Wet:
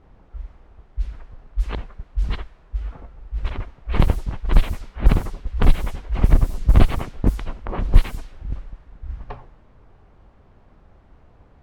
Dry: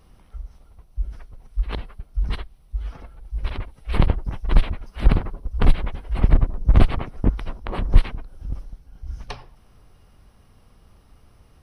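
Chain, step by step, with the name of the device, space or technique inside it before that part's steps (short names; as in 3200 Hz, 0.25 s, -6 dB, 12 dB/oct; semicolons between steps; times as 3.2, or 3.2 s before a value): cassette deck with a dynamic noise filter (white noise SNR 27 dB; low-pass opened by the level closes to 830 Hz, open at -13 dBFS); gain +1 dB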